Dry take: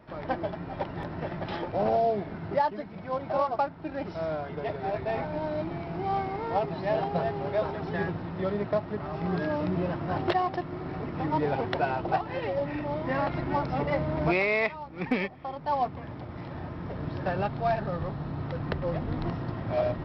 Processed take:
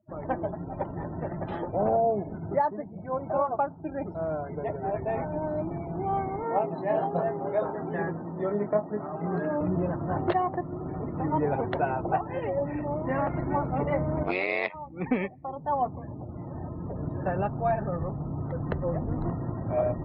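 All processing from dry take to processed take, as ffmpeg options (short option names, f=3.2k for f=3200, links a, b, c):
-filter_complex "[0:a]asettb=1/sr,asplit=3[a][b][c];[a]atrim=end=6.434[d];[b]atrim=start=6.43:end=9.61,asetpts=PTS-STARTPTS,afade=t=in:d=0.004:c=qsin,afade=t=out:st=3.176:d=0.004:c=qsin,highpass=180,asplit=2[e][f];[f]adelay=24,volume=-7.5dB[g];[e][g]amix=inputs=2:normalize=0,atrim=end_sample=140238[h];[c]atrim=start=9.606[i];[d][h]acrossfade=d=0.004:c1=hsin:c2=qsin[j];[j][i]acrossfade=d=0.004:c1=qsin:c2=hsin,asettb=1/sr,asplit=3[k][l][m];[k]atrim=end=14.234[n];[l]atrim=start=14.23:end=14.74,asetpts=PTS-STARTPTS,afade=t=in:d=0.004:c=qsin,afade=t=out:st=0.506:d=0.004:c=qsin,highpass=230,equalizer=f=4k:t=o:w=1.5:g=12.5,tremolo=f=93:d=0.974[o];[m]atrim=start=14.736[p];[n][o]acrossfade=d=0.004:c1=hsin:c2=qsin[q];[q][p]acrossfade=d=0.004:c1=qsin:c2=hsin,afftdn=nr=35:nf=-41,lowpass=f=1.4k:p=1,volume=1.5dB"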